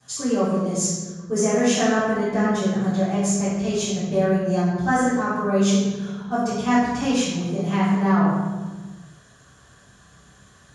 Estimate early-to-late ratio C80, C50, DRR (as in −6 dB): 1.5 dB, −1.0 dB, −16.0 dB